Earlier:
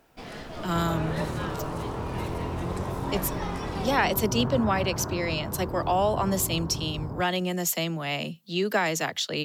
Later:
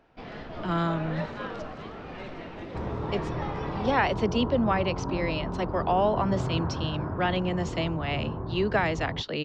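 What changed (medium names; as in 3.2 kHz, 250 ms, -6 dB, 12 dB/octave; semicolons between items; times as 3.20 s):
second sound: entry +2.00 s; master: add Gaussian low-pass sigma 2.1 samples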